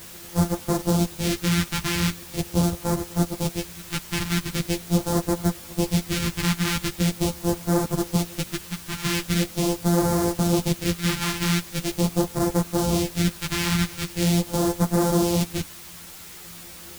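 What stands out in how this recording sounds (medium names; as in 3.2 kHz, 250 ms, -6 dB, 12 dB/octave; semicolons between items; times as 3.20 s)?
a buzz of ramps at a fixed pitch in blocks of 256 samples; phasing stages 2, 0.42 Hz, lowest notch 540–2600 Hz; a quantiser's noise floor 8-bit, dither triangular; a shimmering, thickened sound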